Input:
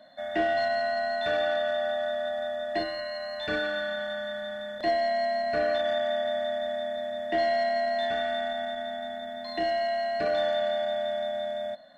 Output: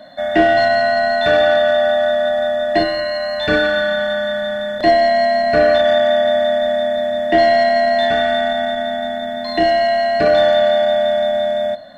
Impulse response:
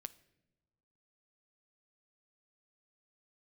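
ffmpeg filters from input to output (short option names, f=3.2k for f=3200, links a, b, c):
-filter_complex "[0:a]asplit=2[a][b];[1:a]atrim=start_sample=2205,lowshelf=f=340:g=8.5[c];[b][c]afir=irnorm=-1:irlink=0,volume=5dB[d];[a][d]amix=inputs=2:normalize=0,volume=6.5dB"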